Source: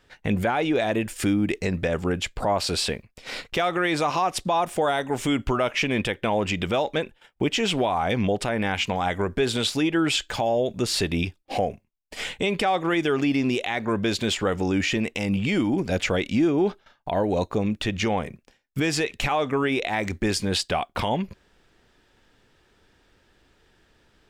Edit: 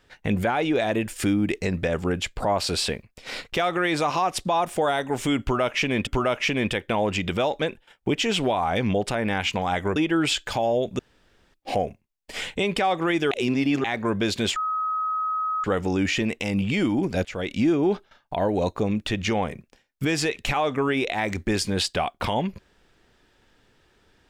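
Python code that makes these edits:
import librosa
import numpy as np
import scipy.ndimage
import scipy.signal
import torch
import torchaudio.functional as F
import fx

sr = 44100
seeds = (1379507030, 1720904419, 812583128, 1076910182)

y = fx.edit(x, sr, fx.repeat(start_s=5.41, length_s=0.66, count=2),
    fx.cut(start_s=9.3, length_s=0.49),
    fx.room_tone_fill(start_s=10.82, length_s=0.55),
    fx.reverse_span(start_s=13.14, length_s=0.53),
    fx.insert_tone(at_s=14.39, length_s=1.08, hz=1270.0, db=-23.0),
    fx.fade_in_from(start_s=16.0, length_s=0.34, floor_db=-18.0), tone=tone)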